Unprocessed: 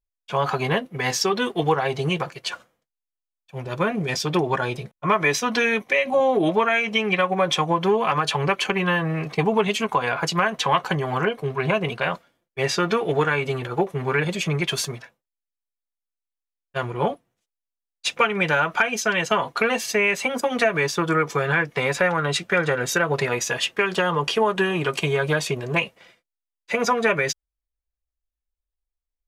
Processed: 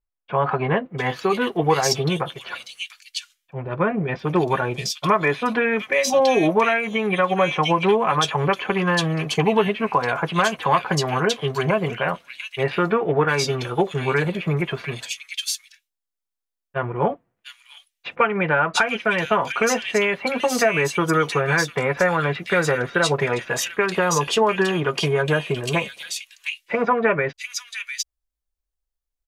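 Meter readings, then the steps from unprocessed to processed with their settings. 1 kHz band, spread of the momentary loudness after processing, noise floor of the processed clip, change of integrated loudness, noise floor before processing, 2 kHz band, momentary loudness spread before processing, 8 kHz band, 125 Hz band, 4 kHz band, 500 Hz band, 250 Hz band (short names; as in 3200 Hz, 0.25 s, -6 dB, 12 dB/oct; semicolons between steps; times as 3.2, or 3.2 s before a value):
+1.5 dB, 11 LU, -84 dBFS, +1.0 dB, under -85 dBFS, 0.0 dB, 7 LU, +2.0 dB, +2.0 dB, +0.5 dB, +2.0 dB, +2.0 dB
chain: bands offset in time lows, highs 0.7 s, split 2500 Hz; gain +2 dB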